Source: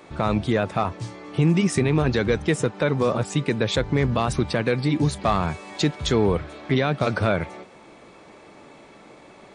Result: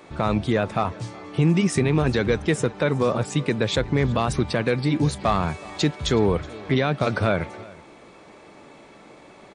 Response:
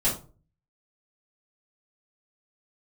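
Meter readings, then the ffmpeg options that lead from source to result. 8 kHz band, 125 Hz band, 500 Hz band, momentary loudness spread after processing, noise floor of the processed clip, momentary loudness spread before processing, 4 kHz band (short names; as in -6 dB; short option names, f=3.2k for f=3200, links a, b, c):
0.0 dB, 0.0 dB, 0.0 dB, 6 LU, -48 dBFS, 6 LU, 0.0 dB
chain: -af "aecho=1:1:371:0.0794"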